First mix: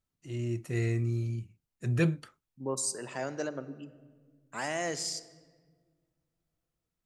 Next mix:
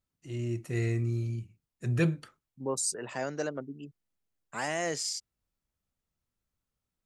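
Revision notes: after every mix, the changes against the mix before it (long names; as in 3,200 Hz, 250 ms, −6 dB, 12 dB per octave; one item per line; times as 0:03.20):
second voice +3.0 dB
reverb: off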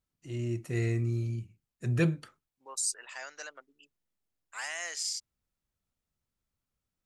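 second voice: add high-pass filter 1,400 Hz 12 dB per octave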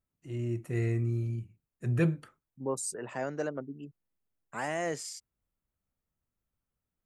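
second voice: remove high-pass filter 1,400 Hz 12 dB per octave
master: add parametric band 4,900 Hz −10 dB 1.5 octaves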